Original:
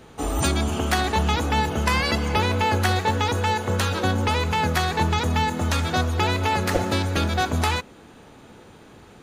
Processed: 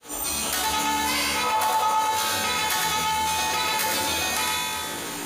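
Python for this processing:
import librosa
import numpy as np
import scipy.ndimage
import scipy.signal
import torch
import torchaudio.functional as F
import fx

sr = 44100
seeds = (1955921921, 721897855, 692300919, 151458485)

y = fx.fade_in_head(x, sr, length_s=1.22)
y = fx.riaa(y, sr, side='recording')
y = fx.comb_fb(y, sr, f0_hz=58.0, decay_s=1.5, harmonics='all', damping=0.0, mix_pct=90)
y = fx.stretch_grains(y, sr, factor=0.57, grain_ms=147.0)
y = fx.spec_box(y, sr, start_s=1.43, length_s=0.56, low_hz=490.0, high_hz=1400.0, gain_db=10)
y = fx.echo_multitap(y, sr, ms=(110, 363), db=(-3.5, -18.5))
y = fx.room_shoebox(y, sr, seeds[0], volume_m3=110.0, walls='mixed', distance_m=0.59)
y = fx.env_flatten(y, sr, amount_pct=70)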